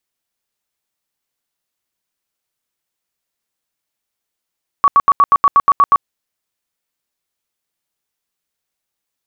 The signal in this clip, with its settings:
tone bursts 1,130 Hz, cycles 44, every 0.12 s, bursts 10, −5.5 dBFS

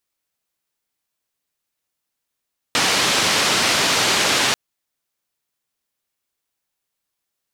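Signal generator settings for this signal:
band-limited noise 120–5,100 Hz, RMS −18 dBFS 1.79 s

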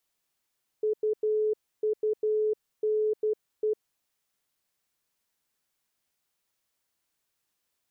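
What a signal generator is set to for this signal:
Morse code "UUNE" 12 words per minute 429 Hz −23 dBFS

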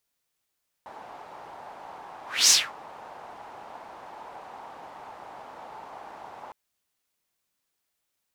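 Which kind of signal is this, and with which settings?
pass-by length 5.66 s, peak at 0:01.64, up 0.26 s, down 0.24 s, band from 840 Hz, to 6,200 Hz, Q 3.4, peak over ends 27.5 dB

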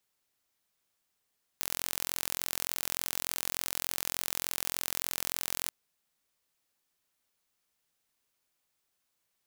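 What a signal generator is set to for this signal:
impulse train 43.4 per second, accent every 0, −5.5 dBFS 4.10 s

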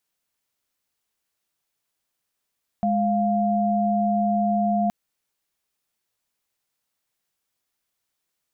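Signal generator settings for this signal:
held notes G#3/F5 sine, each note −21.5 dBFS 2.07 s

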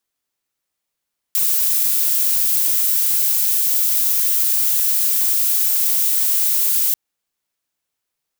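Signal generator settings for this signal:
noise violet, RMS −17 dBFS 5.59 s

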